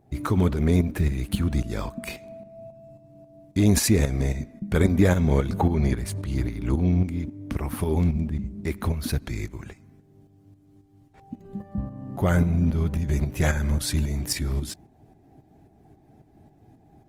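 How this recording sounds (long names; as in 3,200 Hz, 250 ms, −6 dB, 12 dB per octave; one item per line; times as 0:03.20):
tremolo saw up 3.7 Hz, depth 60%
Opus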